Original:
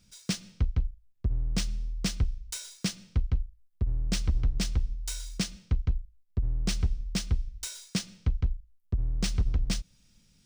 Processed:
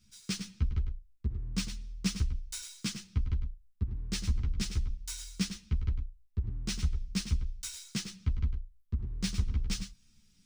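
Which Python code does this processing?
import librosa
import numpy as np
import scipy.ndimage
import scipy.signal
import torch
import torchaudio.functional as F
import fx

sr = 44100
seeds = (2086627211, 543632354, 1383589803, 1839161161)

y = fx.peak_eq(x, sr, hz=600.0, db=-14.5, octaves=0.65)
y = y + 10.0 ** (-9.0 / 20.0) * np.pad(y, (int(103 * sr / 1000.0), 0))[:len(y)]
y = fx.ensemble(y, sr)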